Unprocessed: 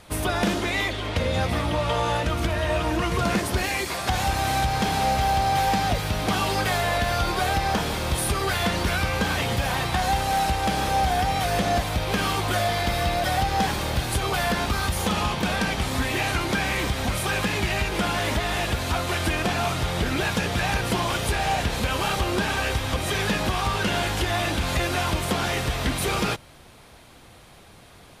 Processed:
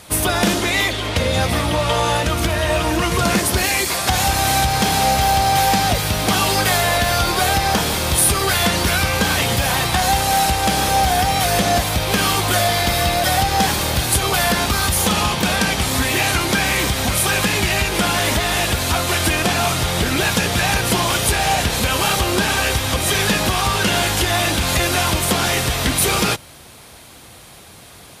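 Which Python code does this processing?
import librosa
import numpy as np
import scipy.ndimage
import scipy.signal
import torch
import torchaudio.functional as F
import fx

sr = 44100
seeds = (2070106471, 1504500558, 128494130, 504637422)

y = scipy.signal.sosfilt(scipy.signal.butter(2, 49.0, 'highpass', fs=sr, output='sos'), x)
y = fx.high_shelf(y, sr, hz=4800.0, db=10.0)
y = y * librosa.db_to_amplitude(5.5)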